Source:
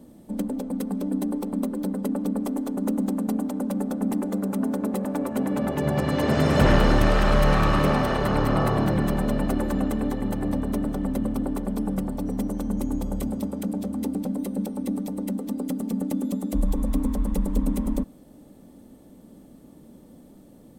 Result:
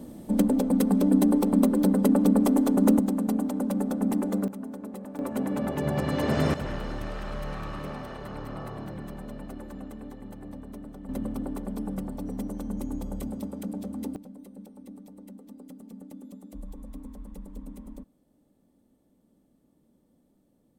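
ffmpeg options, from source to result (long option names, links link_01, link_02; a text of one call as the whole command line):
ffmpeg -i in.wav -af "asetnsamples=nb_out_samples=441:pad=0,asendcmd='2.99 volume volume -0.5dB;4.48 volume volume -12dB;5.19 volume volume -3.5dB;6.54 volume volume -15.5dB;11.09 volume volume -6dB;14.16 volume volume -17.5dB',volume=6dB" out.wav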